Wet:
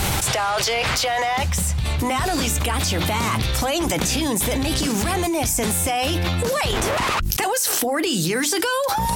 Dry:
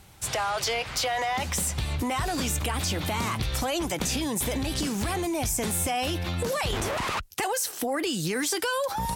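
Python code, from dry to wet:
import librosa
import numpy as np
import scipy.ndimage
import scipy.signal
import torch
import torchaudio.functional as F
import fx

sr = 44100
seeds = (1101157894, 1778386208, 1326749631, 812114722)

y = fx.hum_notches(x, sr, base_hz=50, count=7)
y = fx.low_shelf_res(y, sr, hz=190.0, db=8.0, q=1.5, at=(1.43, 1.84))
y = fx.env_flatten(y, sr, amount_pct=100)
y = y * 10.0 ** (-2.0 / 20.0)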